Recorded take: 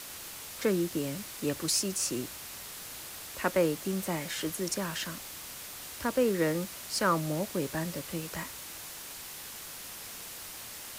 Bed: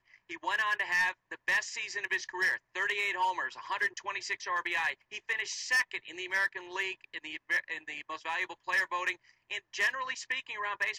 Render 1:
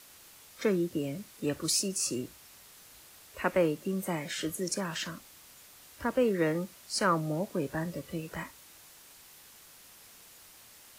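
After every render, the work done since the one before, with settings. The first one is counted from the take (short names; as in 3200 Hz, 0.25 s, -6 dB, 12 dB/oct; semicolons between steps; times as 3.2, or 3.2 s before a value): noise print and reduce 11 dB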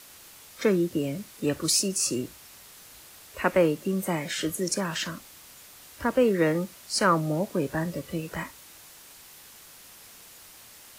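gain +5 dB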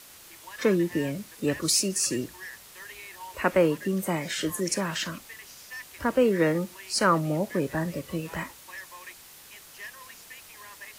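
add bed -13 dB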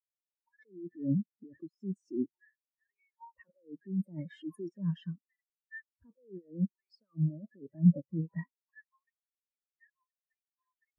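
negative-ratio compressor -31 dBFS, ratio -1; spectral expander 4:1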